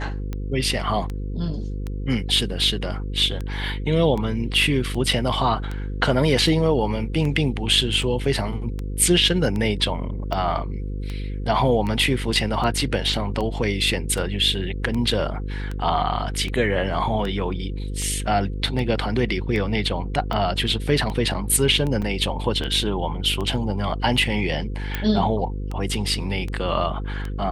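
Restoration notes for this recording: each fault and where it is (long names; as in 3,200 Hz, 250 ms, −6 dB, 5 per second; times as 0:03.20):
mains buzz 50 Hz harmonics 10 −28 dBFS
scratch tick 78 rpm −17 dBFS
0:22.02: drop-out 5 ms
0:24.95: click −11 dBFS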